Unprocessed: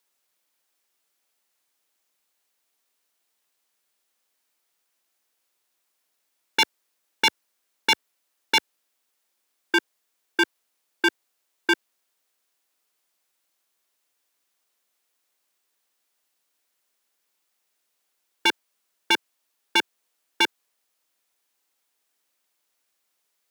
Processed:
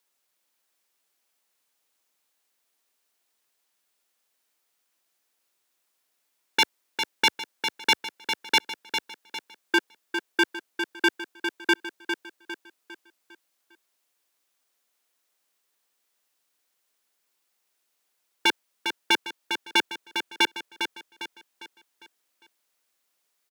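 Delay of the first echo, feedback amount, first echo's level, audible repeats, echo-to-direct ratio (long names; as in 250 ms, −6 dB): 403 ms, 42%, −7.5 dB, 4, −6.5 dB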